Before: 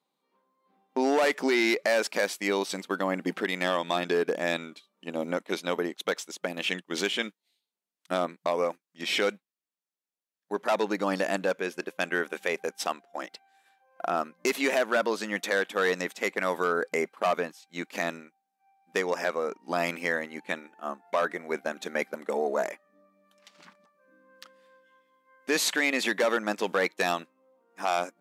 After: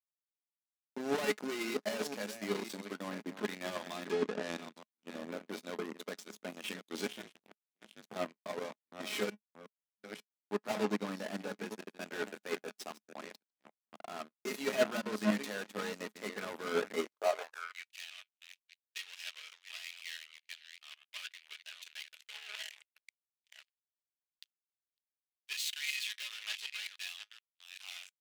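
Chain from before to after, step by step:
delay that plays each chunk backwards 537 ms, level −11.5 dB
in parallel at +2 dB: output level in coarse steps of 23 dB
on the sum: hard clipping −26 dBFS, distortion −6 dB
0:04.11–0:04.58: band-pass filter 110–6,100 Hz
0:07.06–0:08.16: ring modulation 150 Hz
tuned comb filter 210 Hz, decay 0.23 s, harmonics all, mix 70%
power curve on the samples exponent 3
high-pass filter sweep 210 Hz → 2,900 Hz, 0:16.96–0:17.90
level +9.5 dB

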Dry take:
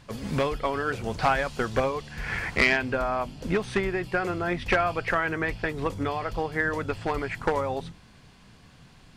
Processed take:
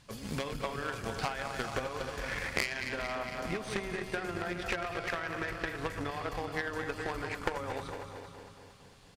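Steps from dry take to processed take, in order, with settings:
feedback delay that plays each chunk backwards 114 ms, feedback 76%, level −8 dB
high-shelf EQ 3,500 Hz +8.5 dB
downward compressor 10 to 1, threshold −25 dBFS, peak gain reduction 12.5 dB
single-tap delay 414 ms −11.5 dB
harmonic generator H 3 −12 dB, 5 −42 dB, 6 −34 dB, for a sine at −13 dBFS
level +2 dB

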